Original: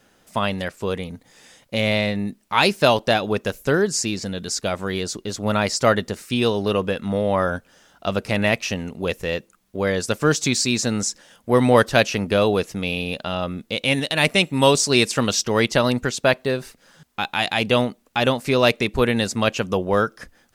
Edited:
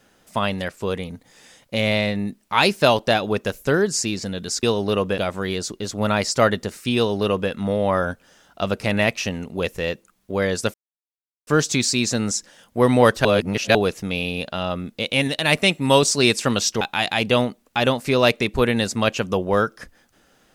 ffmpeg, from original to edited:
-filter_complex "[0:a]asplit=7[a][b][c][d][e][f][g];[a]atrim=end=4.632[h];[b]atrim=start=6.408:end=6.962[i];[c]atrim=start=4.628:end=10.19,asetpts=PTS-STARTPTS,afade=t=out:st=5.558:d=0.004:c=hsin,apad=pad_dur=0.73[j];[d]atrim=start=10.19:end=11.972,asetpts=PTS-STARTPTS,afade=t=in:d=0.004:c=hsin[k];[e]atrim=start=11.968:end=12.472,asetpts=PTS-STARTPTS,areverse[l];[f]atrim=start=12.468:end=15.532[m];[g]atrim=start=17.208[n];[h][i]acrossfade=d=0.004:c1=hsin:c2=hsin[o];[j][k]concat=n=2:v=0:a=1[p];[o][p]acrossfade=d=0.004:c1=hsin:c2=hsin[q];[q][l]acrossfade=d=0.004:c1=hsin:c2=hsin[r];[r][m]acrossfade=d=0.004:c1=hsin:c2=hsin[s];[s][n]acrossfade=d=0.004:c1=hsin:c2=hsin"

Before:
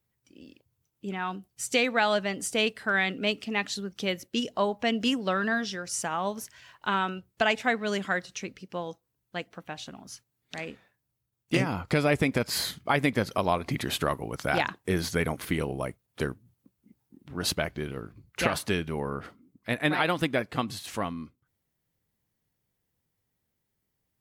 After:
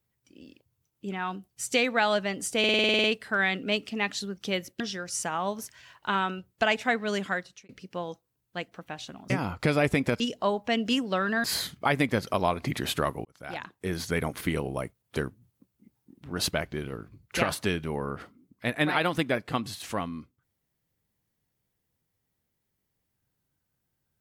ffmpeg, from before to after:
-filter_complex "[0:a]asplit=16[a][b][c][d][e][f][g][h][i][j][k][l][m][n][o][p];[a]atrim=end=2.642[q];[b]atrim=start=2.588:end=2.642[r];[c]atrim=start=2.588:end=2.642[s];[d]atrim=start=2.588:end=2.642[t];[e]atrim=start=2.588:end=2.642[u];[f]atrim=start=2.588:end=2.642[v];[g]atrim=start=2.588:end=2.642[w];[h]atrim=start=2.588:end=2.642[x];[i]atrim=start=2.588:end=2.642[y];[j]atrim=start=2.588:end=4.352[z];[k]atrim=start=5.588:end=8.48,asetpts=PTS-STARTPTS,afade=t=out:st=2.472:d=0.42[aa];[l]atrim=start=8.48:end=10.092,asetpts=PTS-STARTPTS,afade=t=in:d=0.004:c=hsin[ab];[m]atrim=start=11.578:end=12.482[ac];[n]atrim=start=4.348:end=5.592[ad];[o]atrim=start=12.478:end=14.29,asetpts=PTS-STARTPTS,afade=t=out:st=1.808:d=0.004:c=hsin[ae];[p]atrim=start=14.29,asetpts=PTS-STARTPTS,afade=t=in:d=1.04[af];[q][r]acrossfade=d=0.004:c1=hsin:c2=hsin[ag];[ag][s]acrossfade=d=0.004:c1=hsin:c2=hsin[ah];[ah][t]acrossfade=d=0.004:c1=hsin:c2=hsin[ai];[ai][u]acrossfade=d=0.004:c1=hsin:c2=hsin[aj];[aj][v]acrossfade=d=0.004:c1=hsin:c2=hsin[ak];[ak][w]acrossfade=d=0.004:c1=hsin:c2=hsin[al];[al][x]acrossfade=d=0.004:c1=hsin:c2=hsin[am];[am][y]acrossfade=d=0.004:c1=hsin:c2=hsin[an];[an][z]acrossfade=d=0.004:c1=hsin:c2=hsin[ao];[aa][ab]concat=n=2:v=0:a=1[ap];[ao][ap]acrossfade=d=0.004:c1=hsin:c2=hsin[aq];[aq][ac]acrossfade=d=0.004:c1=hsin:c2=hsin[ar];[ar][ad]acrossfade=d=0.004:c1=hsin:c2=hsin[as];[ae][af]concat=n=2:v=0:a=1[at];[as][at]acrossfade=d=0.004:c1=hsin:c2=hsin"

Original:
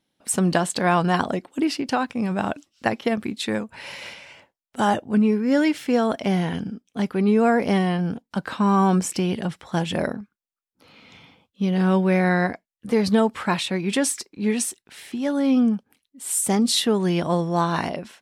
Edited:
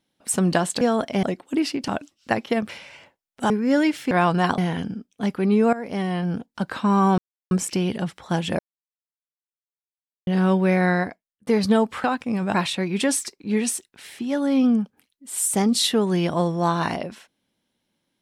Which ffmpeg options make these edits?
-filter_complex "[0:a]asplit=15[a][b][c][d][e][f][g][h][i][j][k][l][m][n][o];[a]atrim=end=0.812[p];[b]atrim=start=5.918:end=6.342[q];[c]atrim=start=1.278:end=1.932[r];[d]atrim=start=2.428:end=3.242[s];[e]atrim=start=4.048:end=4.862[t];[f]atrim=start=5.308:end=5.922[u];[g]atrim=start=0.808:end=1.282[v];[h]atrim=start=6.338:end=7.49,asetpts=PTS-STARTPTS,afade=t=out:st=1.148:d=0.004:c=hsin:silence=0.149624[w];[i]atrim=start=7.49:end=8.94,asetpts=PTS-STARTPTS,afade=t=in:d=0.61:silence=0.149624,afade=t=out:st=1.446:d=0.004:c=hsin,apad=pad_dur=0.33[x];[j]atrim=start=8.94:end=10.02,asetpts=PTS-STARTPTS,afade=t=in:d=0.004:c=hsin,afade=t=out:st=1.076:d=0.004:c=hsin[y];[k]atrim=start=10.02:end=11.7,asetpts=PTS-STARTPTS,volume=0[z];[l]atrim=start=11.7:end=12.9,asetpts=PTS-STARTPTS,afade=t=in:d=0.004:c=hsin,afade=t=out:st=0.65:d=0.55[aa];[m]atrim=start=12.9:end=13.472,asetpts=PTS-STARTPTS,afade=t=in:d=0.004:c=hsin[ab];[n]atrim=start=1.928:end=2.432[ac];[o]atrim=start=13.468[ad];[p][q]acrossfade=d=0.004:c1=hsin:c2=hsin[ae];[ae][r]acrossfade=d=0.004:c1=hsin:c2=hsin[af];[af][s]acrossfade=d=0.004:c1=hsin:c2=hsin[ag];[ag][t]acrossfade=d=0.004:c1=hsin:c2=hsin[ah];[ah][u]acrossfade=d=0.004:c1=hsin:c2=hsin[ai];[ai][v]acrossfade=d=0.004:c1=hsin:c2=hsin[aj];[w][x][y][z][aa][ab]concat=n=6:v=0:a=1[ak];[aj][ak]acrossfade=d=0.004:c1=hsin:c2=hsin[al];[al][ac]acrossfade=d=0.004:c1=hsin:c2=hsin[am];[am][ad]acrossfade=d=0.004:c1=hsin:c2=hsin"

